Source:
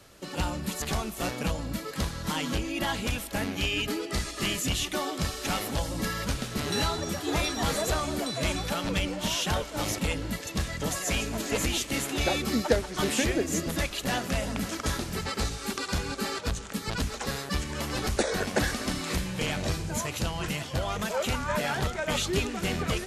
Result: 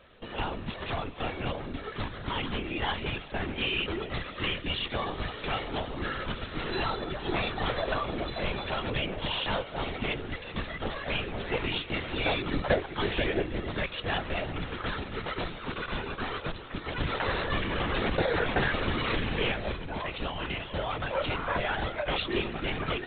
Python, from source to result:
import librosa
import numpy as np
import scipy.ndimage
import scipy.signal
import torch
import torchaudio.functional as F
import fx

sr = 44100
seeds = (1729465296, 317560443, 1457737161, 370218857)

y = fx.low_shelf(x, sr, hz=170.0, db=-7.5)
y = fx.lpc_vocoder(y, sr, seeds[0], excitation='whisper', order=16)
y = fx.env_flatten(y, sr, amount_pct=50, at=(17.0, 19.52))